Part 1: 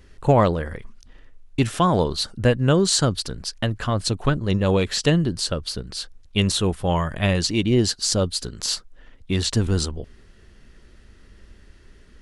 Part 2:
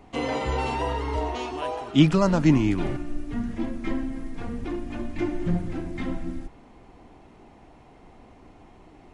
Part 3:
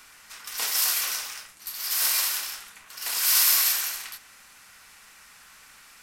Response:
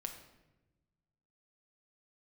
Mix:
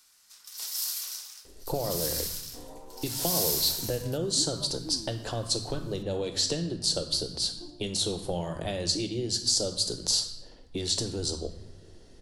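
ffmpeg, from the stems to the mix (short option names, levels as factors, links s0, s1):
-filter_complex "[0:a]acompressor=threshold=0.0631:ratio=6,adelay=1450,volume=1.33,asplit=2[s0][s1];[s1]volume=0.398[s2];[1:a]adelay=2400,volume=0.112[s3];[2:a]volume=0.133[s4];[s0][s3]amix=inputs=2:normalize=0,asuperpass=centerf=500:order=8:qfactor=0.6,acompressor=threshold=0.0251:ratio=6,volume=1[s5];[3:a]atrim=start_sample=2205[s6];[s2][s6]afir=irnorm=-1:irlink=0[s7];[s4][s5][s7]amix=inputs=3:normalize=0,highshelf=f=3200:t=q:w=1.5:g=9"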